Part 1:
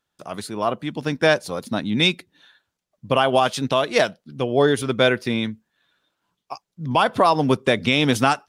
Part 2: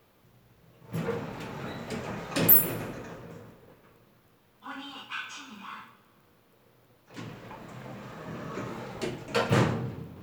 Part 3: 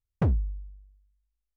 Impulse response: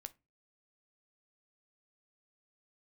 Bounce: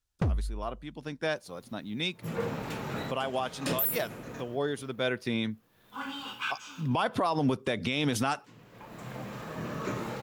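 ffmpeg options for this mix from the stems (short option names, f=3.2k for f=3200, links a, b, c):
-filter_complex "[0:a]volume=-3dB,afade=t=in:st=5.01:d=0.64:silence=0.281838,asplit=2[a][b];[1:a]equalizer=f=12k:w=0.47:g=4,asoftclip=type=tanh:threshold=-2.5dB,adelay=1300,volume=2.5dB[c];[2:a]acompressor=threshold=-30dB:ratio=2,equalizer=f=5.7k:w=0.5:g=9.5,volume=0.5dB[d];[b]apad=whole_len=508133[e];[c][e]sidechaincompress=threshold=-37dB:ratio=16:attack=6.2:release=492[f];[a][f][d]amix=inputs=3:normalize=0,alimiter=limit=-18.5dB:level=0:latency=1:release=71"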